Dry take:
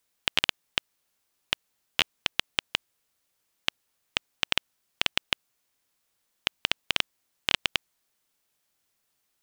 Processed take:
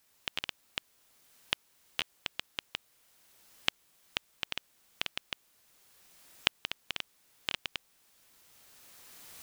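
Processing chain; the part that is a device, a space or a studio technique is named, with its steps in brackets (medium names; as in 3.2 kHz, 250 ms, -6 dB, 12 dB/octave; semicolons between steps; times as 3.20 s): cheap recorder with automatic gain (white noise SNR 23 dB; recorder AGC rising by 12 dB/s); trim -12.5 dB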